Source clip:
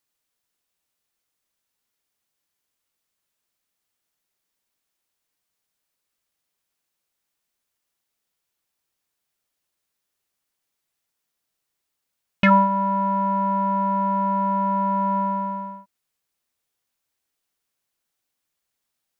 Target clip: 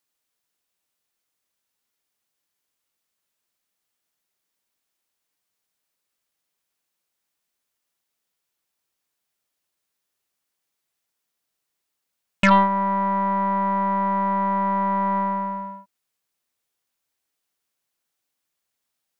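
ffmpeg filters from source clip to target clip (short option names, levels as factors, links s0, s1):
-af "aeval=exprs='0.501*(cos(1*acos(clip(val(0)/0.501,-1,1)))-cos(1*PI/2))+0.0708*(cos(4*acos(clip(val(0)/0.501,-1,1)))-cos(4*PI/2))':c=same,lowshelf=f=94:g=-6"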